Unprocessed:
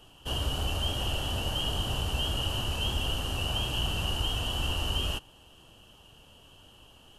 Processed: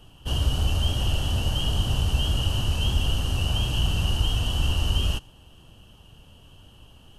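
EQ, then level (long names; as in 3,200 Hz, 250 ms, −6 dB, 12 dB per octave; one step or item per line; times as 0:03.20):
bass and treble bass +9 dB, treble 0 dB
notch filter 7,200 Hz, Q 17
dynamic equaliser 6,100 Hz, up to +5 dB, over −48 dBFS, Q 0.9
0.0 dB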